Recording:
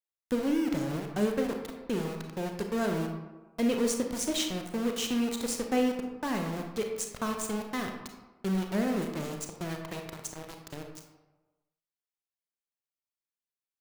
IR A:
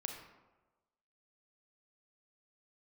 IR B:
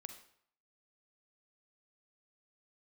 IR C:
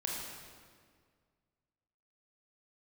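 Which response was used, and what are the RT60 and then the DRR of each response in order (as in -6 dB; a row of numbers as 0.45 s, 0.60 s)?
A; 1.2 s, 0.65 s, 1.9 s; 3.0 dB, 6.5 dB, -2.5 dB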